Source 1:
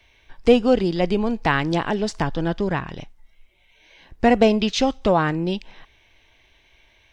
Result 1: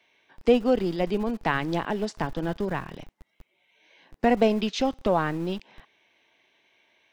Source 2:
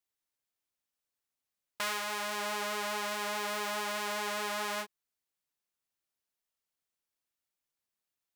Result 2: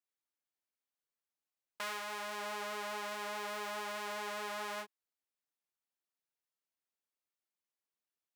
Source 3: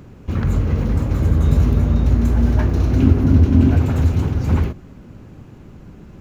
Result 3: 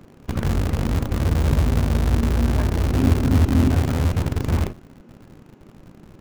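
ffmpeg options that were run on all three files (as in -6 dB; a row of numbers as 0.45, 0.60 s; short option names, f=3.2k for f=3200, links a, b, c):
-filter_complex "[0:a]highshelf=f=3k:g=-5,acrossover=split=160[a][b];[a]acrusher=bits=4:dc=4:mix=0:aa=0.000001[c];[c][b]amix=inputs=2:normalize=0,volume=-4.5dB"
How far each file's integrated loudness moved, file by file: -5.5, -6.0, -4.0 LU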